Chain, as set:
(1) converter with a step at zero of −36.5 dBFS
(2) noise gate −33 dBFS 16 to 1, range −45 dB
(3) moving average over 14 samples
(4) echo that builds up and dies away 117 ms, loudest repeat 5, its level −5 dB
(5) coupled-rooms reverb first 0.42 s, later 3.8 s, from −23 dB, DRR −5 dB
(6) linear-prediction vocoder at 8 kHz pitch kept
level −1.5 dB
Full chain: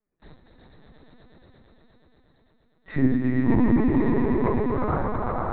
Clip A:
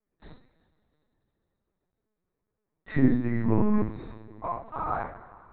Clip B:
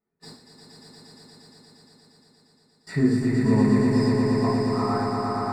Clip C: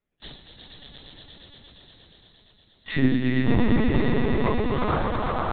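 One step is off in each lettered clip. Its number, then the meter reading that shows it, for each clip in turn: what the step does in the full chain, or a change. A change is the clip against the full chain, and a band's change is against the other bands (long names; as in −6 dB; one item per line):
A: 4, change in momentary loudness spread +10 LU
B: 6, change in integrated loudness +1.0 LU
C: 3, 2 kHz band +5.0 dB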